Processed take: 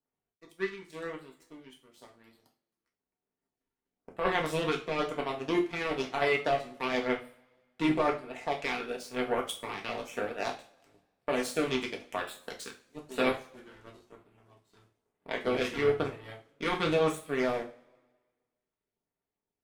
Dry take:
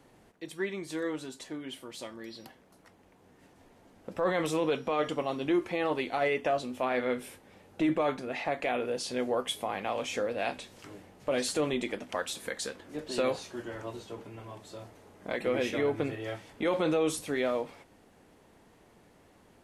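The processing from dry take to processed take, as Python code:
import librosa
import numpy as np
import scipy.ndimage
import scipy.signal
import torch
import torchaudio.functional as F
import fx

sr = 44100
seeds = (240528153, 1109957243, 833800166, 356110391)

y = fx.power_curve(x, sr, exponent=2.0)
y = fx.filter_lfo_notch(y, sr, shape='sine', hz=1.0, low_hz=570.0, high_hz=6500.0, q=1.6)
y = fx.rev_double_slope(y, sr, seeds[0], early_s=0.34, late_s=1.5, knee_db=-25, drr_db=0.0)
y = F.gain(torch.from_numpy(y), 5.0).numpy()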